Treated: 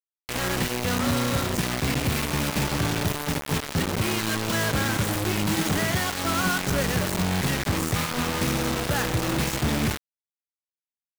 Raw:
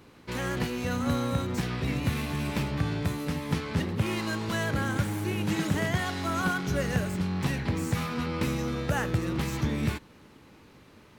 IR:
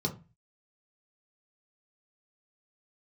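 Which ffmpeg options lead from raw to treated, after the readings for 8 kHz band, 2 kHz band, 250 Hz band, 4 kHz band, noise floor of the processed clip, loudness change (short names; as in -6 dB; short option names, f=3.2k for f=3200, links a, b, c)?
+12.0 dB, +5.5 dB, +2.5 dB, +9.5 dB, under -85 dBFS, +4.5 dB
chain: -af "asoftclip=type=tanh:threshold=-23.5dB,acrusher=bits=4:mix=0:aa=0.000001,volume=4dB"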